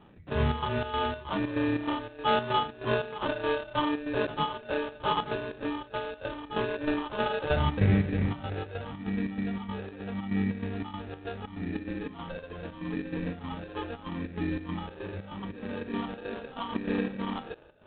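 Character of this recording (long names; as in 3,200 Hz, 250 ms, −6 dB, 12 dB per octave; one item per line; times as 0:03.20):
phaser sweep stages 6, 0.78 Hz, lowest notch 220–1,200 Hz
aliases and images of a low sample rate 2,100 Hz, jitter 0%
chopped level 3.2 Hz, depth 60%, duty 65%
IMA ADPCM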